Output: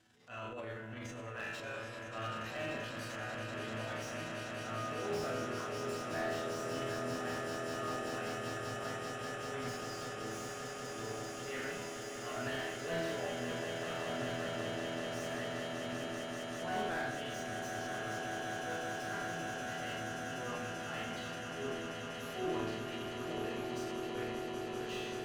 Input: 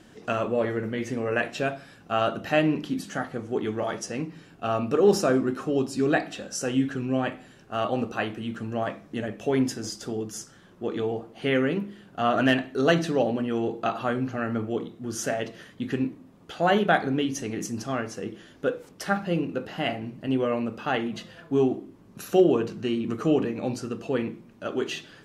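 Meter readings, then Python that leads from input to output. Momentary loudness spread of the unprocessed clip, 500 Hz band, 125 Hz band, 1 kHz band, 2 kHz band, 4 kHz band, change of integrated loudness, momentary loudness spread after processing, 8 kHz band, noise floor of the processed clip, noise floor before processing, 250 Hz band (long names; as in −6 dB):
11 LU, −13.5 dB, −12.0 dB, −10.0 dB, −8.0 dB, −7.0 dB, −12.5 dB, 5 LU, −8.0 dB, −45 dBFS, −53 dBFS, −16.5 dB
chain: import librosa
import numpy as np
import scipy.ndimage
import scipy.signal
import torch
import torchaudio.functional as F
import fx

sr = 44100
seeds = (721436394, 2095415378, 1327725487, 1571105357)

y = scipy.signal.sosfilt(scipy.signal.butter(2, 42.0, 'highpass', fs=sr, output='sos'), x)
y = fx.resonator_bank(y, sr, root=40, chord='sus4', decay_s=0.68)
y = fx.transient(y, sr, attack_db=-9, sustain_db=9)
y = fx.peak_eq(y, sr, hz=290.0, db=-9.5, octaves=2.6)
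y = fx.echo_swell(y, sr, ms=194, loudest=8, wet_db=-9.0)
y = fx.slew_limit(y, sr, full_power_hz=13.0)
y = y * 10.0 ** (5.0 / 20.0)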